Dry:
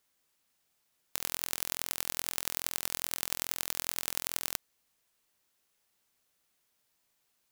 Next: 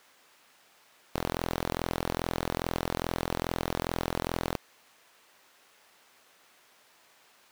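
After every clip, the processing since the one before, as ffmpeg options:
-filter_complex "[0:a]asplit=2[s0][s1];[s1]highpass=f=720:p=1,volume=63.1,asoftclip=type=tanh:threshold=0.794[s2];[s0][s2]amix=inputs=2:normalize=0,lowpass=f=1500:p=1,volume=0.501,acrusher=bits=2:mode=log:mix=0:aa=0.000001,volume=0.562"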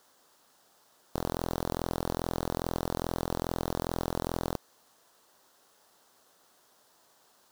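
-af "equalizer=f=2300:t=o:w=0.82:g=-14.5"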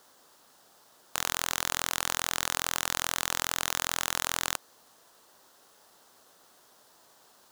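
-af "aeval=exprs='(mod(8.91*val(0)+1,2)-1)/8.91':c=same,volume=1.68"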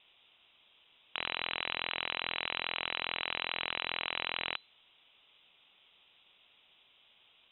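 -af "lowpass=f=3400:t=q:w=0.5098,lowpass=f=3400:t=q:w=0.6013,lowpass=f=3400:t=q:w=0.9,lowpass=f=3400:t=q:w=2.563,afreqshift=-4000,volume=0.794"

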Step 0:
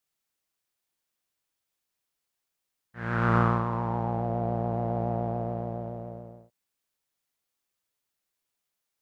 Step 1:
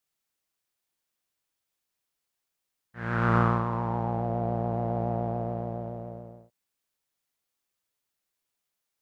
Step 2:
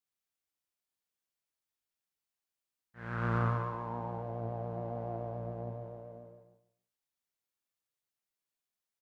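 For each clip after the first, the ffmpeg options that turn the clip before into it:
-af anull
-filter_complex "[0:a]flanger=delay=8.8:depth=9:regen=68:speed=0.45:shape=triangular,asplit=2[s0][s1];[s1]aecho=0:1:144|288|432:0.473|0.109|0.025[s2];[s0][s2]amix=inputs=2:normalize=0,volume=0.562"

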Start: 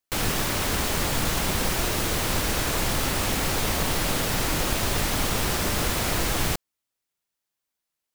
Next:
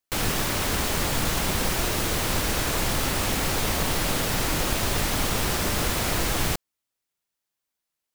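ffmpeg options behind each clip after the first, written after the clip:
-af anull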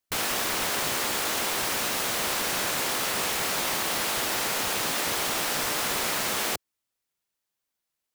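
-af "afftfilt=real='re*lt(hypot(re,im),0.141)':imag='im*lt(hypot(re,im),0.141)':win_size=1024:overlap=0.75"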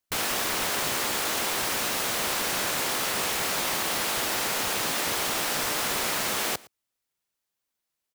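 -af "aecho=1:1:113:0.075"

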